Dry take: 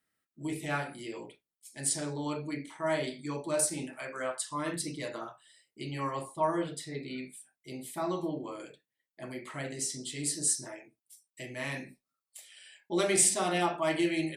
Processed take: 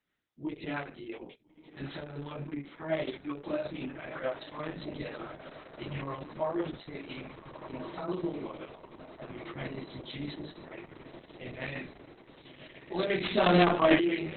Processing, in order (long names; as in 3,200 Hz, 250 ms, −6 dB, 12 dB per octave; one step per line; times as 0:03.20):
0:13.23–0:13.98: leveller curve on the samples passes 3
rotating-speaker cabinet horn 6 Hz
chorus effect 0.26 Hz, delay 16 ms, depth 6.5 ms
feedback delay with all-pass diffusion 1,350 ms, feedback 64%, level −12 dB
downsampling to 11,025 Hz
level +5 dB
Opus 6 kbit/s 48,000 Hz